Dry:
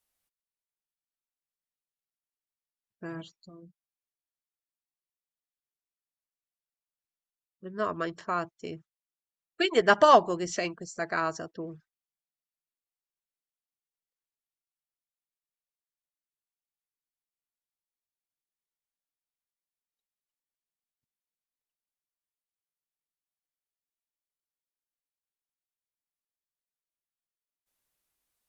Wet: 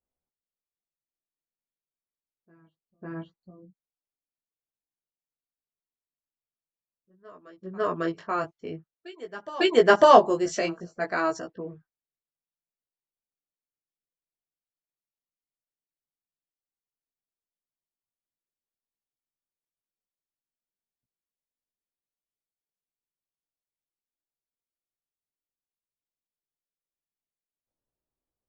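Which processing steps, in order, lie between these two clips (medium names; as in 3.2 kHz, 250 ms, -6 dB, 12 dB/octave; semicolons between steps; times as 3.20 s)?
dynamic bell 400 Hz, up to +5 dB, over -35 dBFS, Q 0.74; level-controlled noise filter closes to 620 Hz, open at -26 dBFS; reverse echo 550 ms -21.5 dB; chorus 0.53 Hz, delay 15.5 ms, depth 4.1 ms; trim +4 dB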